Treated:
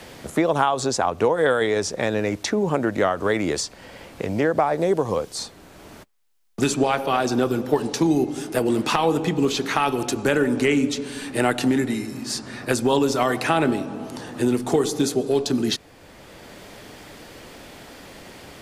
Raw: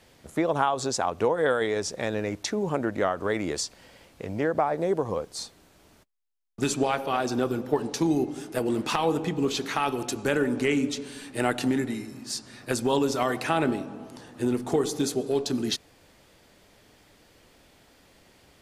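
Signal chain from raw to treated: three-band squash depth 40%; gain +5 dB

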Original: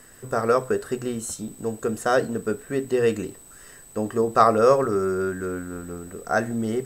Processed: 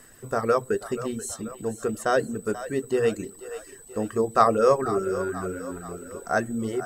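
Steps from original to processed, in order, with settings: split-band echo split 400 Hz, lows 96 ms, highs 0.484 s, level -12.5 dB; reverb removal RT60 0.63 s; gain -1.5 dB

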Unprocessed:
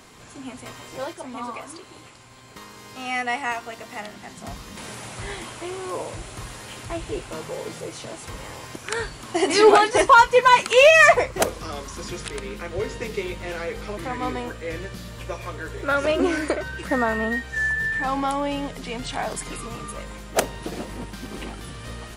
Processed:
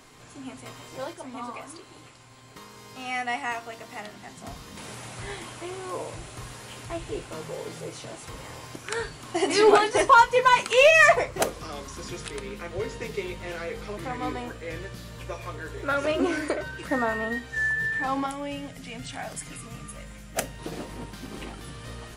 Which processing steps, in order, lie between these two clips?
18.26–20.59 fifteen-band EQ 400 Hz -11 dB, 1000 Hz -10 dB, 4000 Hz -5 dB; reverb RT60 0.25 s, pre-delay 3 ms, DRR 11 dB; gain -4 dB

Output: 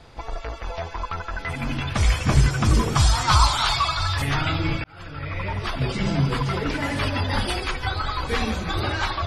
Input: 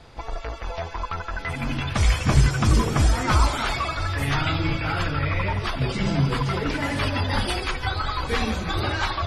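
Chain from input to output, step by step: 2.95–4.22 graphic EQ 125/250/500/1000/2000/4000/8000 Hz +5/-10/-7/+8/-4/+10/+4 dB; 4.84–5.76 fade in

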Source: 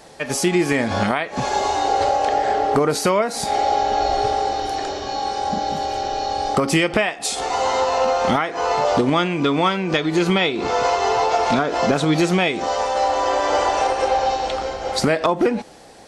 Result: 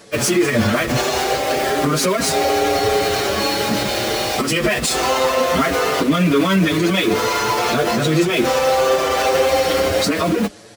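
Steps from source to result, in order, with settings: AGC gain up to 4 dB; in parallel at -5 dB: Schmitt trigger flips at -27 dBFS; on the sum: plain phase-vocoder stretch 0.67×; HPF 68 Hz; bell 820 Hz -12 dB 0.36 oct; limiter -13.5 dBFS, peak gain reduction 9.5 dB; endless flanger 6.6 ms +0.28 Hz; gain +8 dB

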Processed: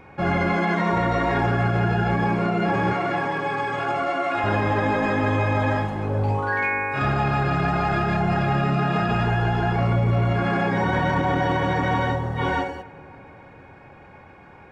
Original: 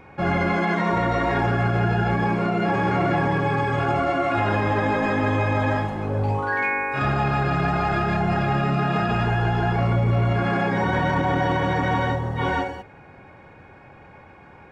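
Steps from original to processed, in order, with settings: 2.93–4.44 HPF 480 Hz 6 dB/oct; on a send: darkening echo 0.281 s, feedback 70%, low-pass 2000 Hz, level -21 dB

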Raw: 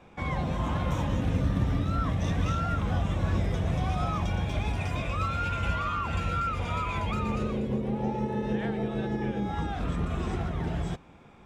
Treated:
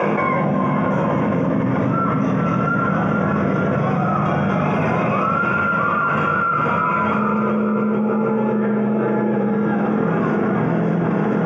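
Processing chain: HPF 190 Hz 24 dB/oct; dynamic EQ 1400 Hz, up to +7 dB, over -50 dBFS, Q 7.6; running mean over 11 samples; echo with dull and thin repeats by turns 0.22 s, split 810 Hz, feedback 85%, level -6 dB; shoebox room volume 2400 m³, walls furnished, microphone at 5.3 m; fast leveller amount 100%; gain -1 dB

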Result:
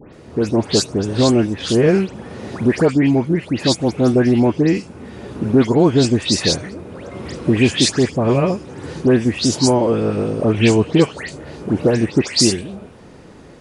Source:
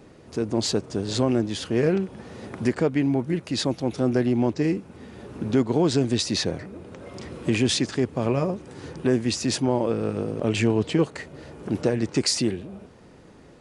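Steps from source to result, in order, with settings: dispersion highs, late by 0.142 s, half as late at 2700 Hz; spectral repair 9.48–9.69, 860–3800 Hz both; gain +8 dB

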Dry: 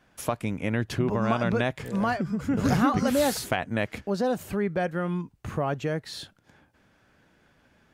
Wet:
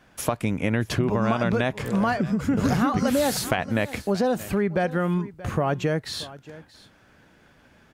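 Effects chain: on a send: echo 0.629 s -20 dB; on the sum: compressor 4:1, threshold -25 dBFS, peak gain reduction 7 dB; gain +6 dB

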